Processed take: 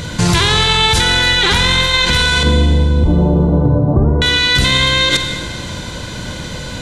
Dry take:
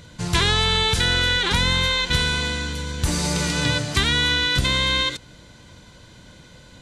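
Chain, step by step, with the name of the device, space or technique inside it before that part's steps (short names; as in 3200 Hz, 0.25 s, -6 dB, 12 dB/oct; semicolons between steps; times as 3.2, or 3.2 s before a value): 2.43–4.22 Bessel low-pass 530 Hz, order 8; loud club master (compressor 2.5:1, threshold -23 dBFS, peak gain reduction 6 dB; hard clip -13 dBFS, distortion -50 dB; maximiser +23.5 dB); Schroeder reverb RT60 2 s, DRR 6 dB; gain -3.5 dB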